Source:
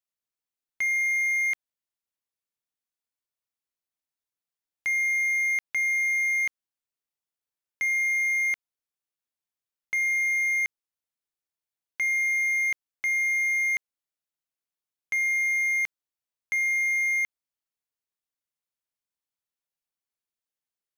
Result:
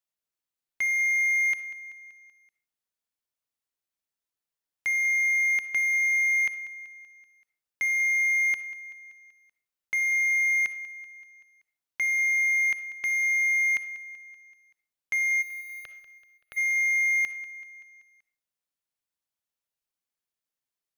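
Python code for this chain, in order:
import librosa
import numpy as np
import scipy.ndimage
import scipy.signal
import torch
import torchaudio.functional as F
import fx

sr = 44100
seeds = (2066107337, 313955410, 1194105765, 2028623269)

y = fx.highpass(x, sr, hz=760.0, slope=12, at=(6.02, 6.47))
y = fx.fixed_phaser(y, sr, hz=1400.0, stages=8, at=(15.41, 16.56), fade=0.02)
y = fx.echo_feedback(y, sr, ms=191, feedback_pct=56, wet_db=-16.0)
y = fx.rev_freeverb(y, sr, rt60_s=0.43, hf_ratio=0.7, predelay_ms=20, drr_db=12.5)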